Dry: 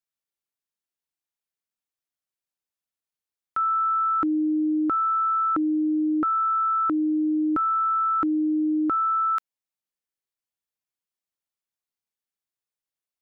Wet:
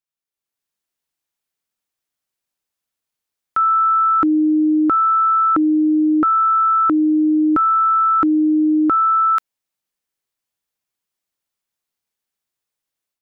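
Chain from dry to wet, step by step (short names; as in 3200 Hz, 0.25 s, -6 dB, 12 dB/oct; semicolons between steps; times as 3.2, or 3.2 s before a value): AGC gain up to 9.5 dB; gain -1.5 dB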